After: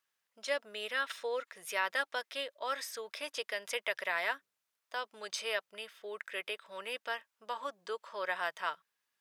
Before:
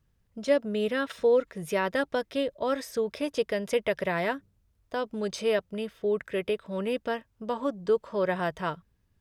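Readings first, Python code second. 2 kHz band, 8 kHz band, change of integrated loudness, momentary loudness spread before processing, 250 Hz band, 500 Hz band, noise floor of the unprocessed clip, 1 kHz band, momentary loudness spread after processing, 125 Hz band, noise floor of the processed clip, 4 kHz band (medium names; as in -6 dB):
-0.5 dB, 0.0 dB, -8.0 dB, 8 LU, -25.0 dB, -13.5 dB, -71 dBFS, -4.5 dB, 9 LU, under -30 dB, under -85 dBFS, 0.0 dB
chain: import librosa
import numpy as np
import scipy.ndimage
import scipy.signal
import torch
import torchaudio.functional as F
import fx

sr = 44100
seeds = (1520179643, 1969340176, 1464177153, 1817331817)

y = scipy.signal.sosfilt(scipy.signal.butter(2, 1100.0, 'highpass', fs=sr, output='sos'), x)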